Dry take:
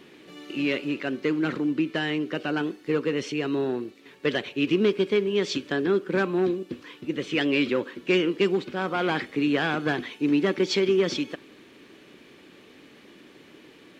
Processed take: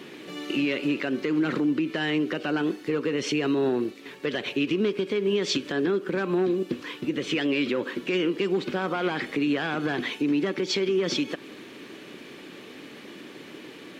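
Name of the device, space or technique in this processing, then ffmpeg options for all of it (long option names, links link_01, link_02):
podcast mastering chain: -af "highpass=110,acompressor=threshold=-25dB:ratio=6,alimiter=level_in=0.5dB:limit=-24dB:level=0:latency=1:release=119,volume=-0.5dB,volume=8dB" -ar 48000 -c:a libmp3lame -b:a 96k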